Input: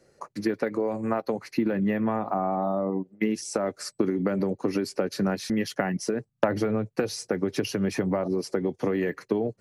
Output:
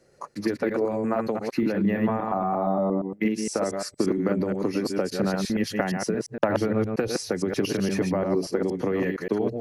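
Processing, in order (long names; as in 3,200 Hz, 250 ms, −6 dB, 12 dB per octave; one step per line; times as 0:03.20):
delay that plays each chunk backwards 116 ms, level −3 dB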